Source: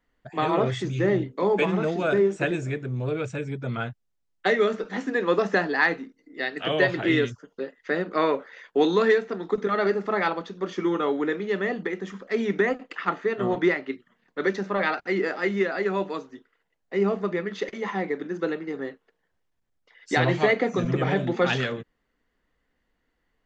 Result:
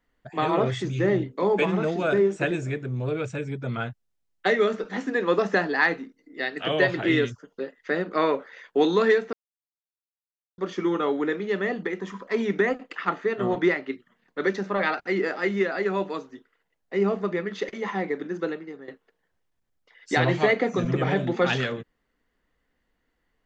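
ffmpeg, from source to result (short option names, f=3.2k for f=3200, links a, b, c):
-filter_complex "[0:a]asettb=1/sr,asplit=3[a][b][c];[a]atrim=end=12.004[d];[b]atrim=start=12:end=12.43,asetpts=PTS-STARTPTS,afade=t=in:d=0.004:c=qsin,afade=t=out:st=0.426:d=0.004:c=qsin,equalizer=f=1k:t=o:w=0.22:g=15[e];[c]atrim=start=12.426[f];[d][e]acrossfade=d=0.004:c1=hsin:c2=qsin[g];[g][f]acrossfade=d=0.004:c1=qsin:c2=hsin,asplit=4[h][i][j][k];[h]atrim=end=9.33,asetpts=PTS-STARTPTS,afade=t=out:st=9.326:d=0.004:c=hsin[l];[i]atrim=start=9.33:end=10.58,asetpts=PTS-STARTPTS,volume=0[m];[j]atrim=start=10.58:end=18.88,asetpts=PTS-STARTPTS,afade=t=in:d=0.004:c=hsin,afade=t=out:st=7.78:d=0.52:silence=0.177828[n];[k]atrim=start=18.88,asetpts=PTS-STARTPTS,afade=t=in:d=0.004:c=hsin:silence=0.177828[o];[l][m][n][o]concat=n=4:v=0:a=1"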